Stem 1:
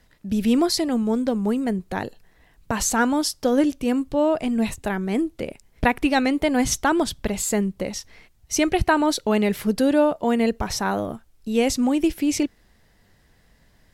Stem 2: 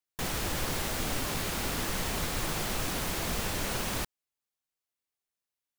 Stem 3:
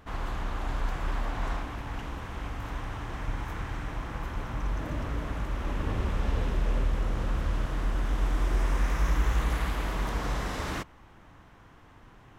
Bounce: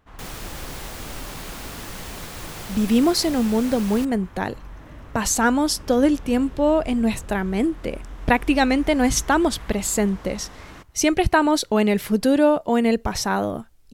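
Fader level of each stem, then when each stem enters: +1.5 dB, -3.0 dB, -9.0 dB; 2.45 s, 0.00 s, 0.00 s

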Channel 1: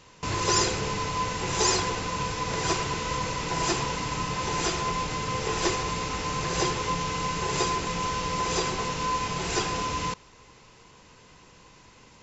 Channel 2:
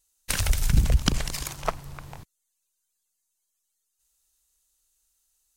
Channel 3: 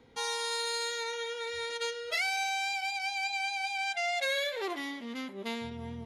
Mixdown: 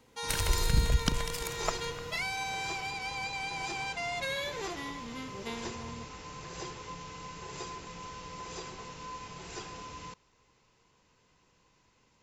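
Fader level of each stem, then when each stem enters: -15.0 dB, -6.0 dB, -4.0 dB; 0.00 s, 0.00 s, 0.00 s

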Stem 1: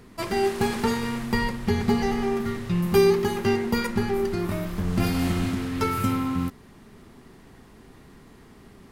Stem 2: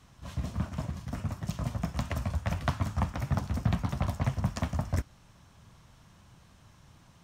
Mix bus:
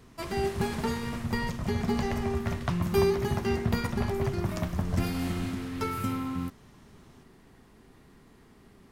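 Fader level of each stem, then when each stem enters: -6.5 dB, -2.0 dB; 0.00 s, 0.00 s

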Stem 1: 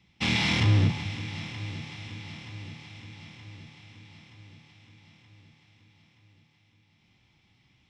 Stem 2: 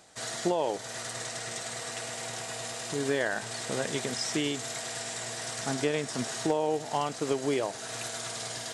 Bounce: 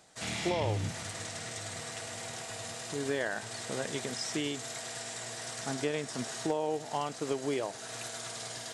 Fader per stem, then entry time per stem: -12.5 dB, -4.0 dB; 0.00 s, 0.00 s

